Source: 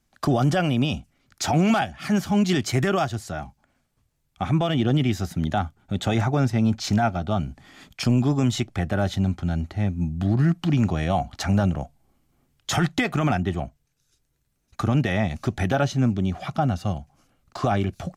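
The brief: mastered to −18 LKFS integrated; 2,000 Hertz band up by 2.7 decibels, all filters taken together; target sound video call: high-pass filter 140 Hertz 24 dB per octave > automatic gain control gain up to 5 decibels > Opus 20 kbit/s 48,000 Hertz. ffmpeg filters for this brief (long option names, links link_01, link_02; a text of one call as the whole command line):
ffmpeg -i in.wav -af "highpass=frequency=140:width=0.5412,highpass=frequency=140:width=1.3066,equalizer=frequency=2000:width_type=o:gain=3.5,dynaudnorm=maxgain=5dB,volume=6dB" -ar 48000 -c:a libopus -b:a 20k out.opus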